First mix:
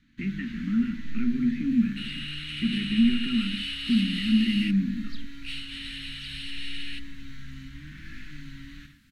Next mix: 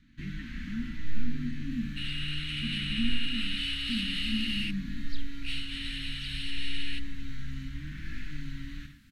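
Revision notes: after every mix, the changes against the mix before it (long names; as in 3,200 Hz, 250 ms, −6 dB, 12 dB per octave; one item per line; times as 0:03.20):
speech −11.5 dB
first sound: add low-shelf EQ 140 Hz +6.5 dB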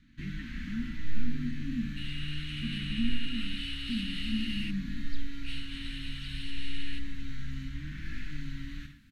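second sound −6.0 dB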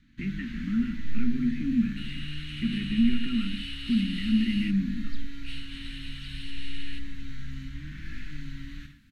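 speech +9.5 dB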